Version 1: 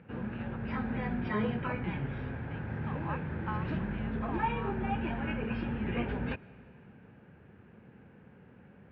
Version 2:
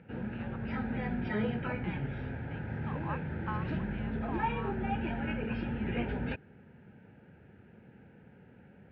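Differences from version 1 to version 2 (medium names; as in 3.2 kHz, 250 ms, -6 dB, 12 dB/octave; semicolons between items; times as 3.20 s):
background: add Butterworth band-stop 1.1 kHz, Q 4; reverb: off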